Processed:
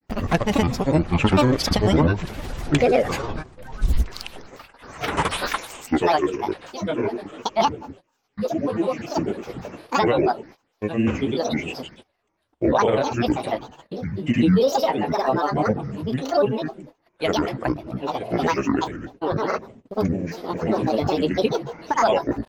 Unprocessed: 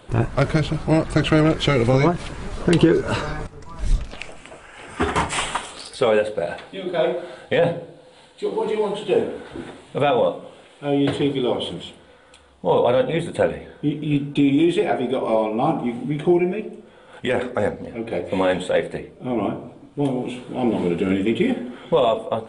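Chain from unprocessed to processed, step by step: granulator, pitch spread up and down by 12 st; gate -42 dBFS, range -22 dB

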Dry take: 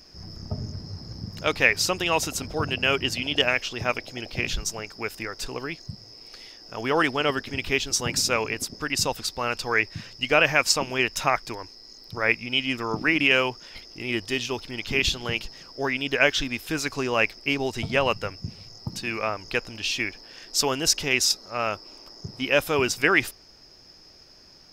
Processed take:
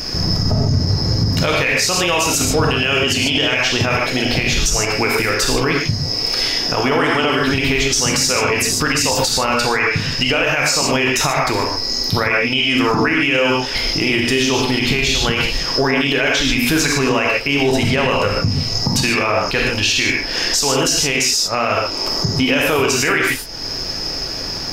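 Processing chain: dynamic bell 6.6 kHz, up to +4 dB, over -39 dBFS, Q 2.2; compression 2.5:1, threshold -42 dBFS, peak gain reduction 19 dB; flange 0.56 Hz, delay 6.5 ms, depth 8.8 ms, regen -87%; gated-style reverb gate 170 ms flat, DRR 0 dB; loudness maximiser +35 dB; trim -6 dB

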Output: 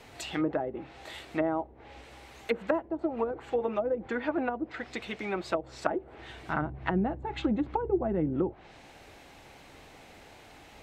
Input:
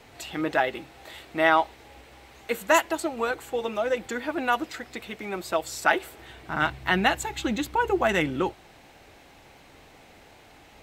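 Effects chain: low-pass that closes with the level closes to 420 Hz, closed at -22 dBFS

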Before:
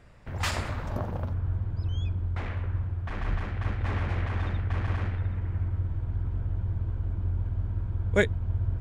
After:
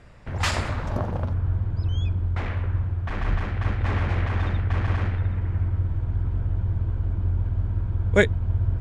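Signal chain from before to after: low-pass 10 kHz 12 dB/octave; trim +5 dB

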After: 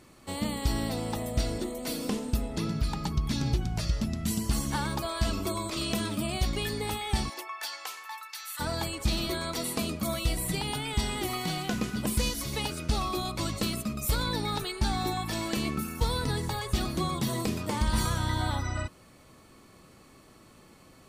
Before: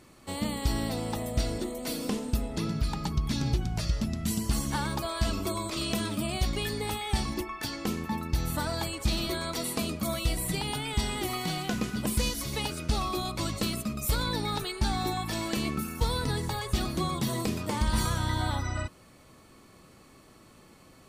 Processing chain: 7.28–8.59 s: high-pass 470 Hz -> 1.4 kHz 24 dB/octave

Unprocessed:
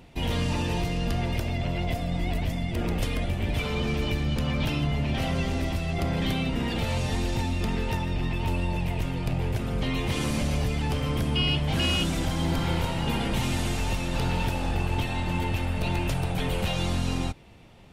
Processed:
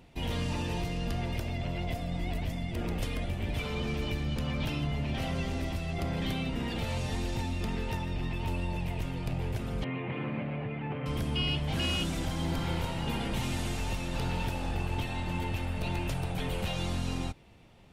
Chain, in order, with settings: 9.84–11.06 s: elliptic band-pass 120–2400 Hz, stop band 40 dB; trim -5.5 dB

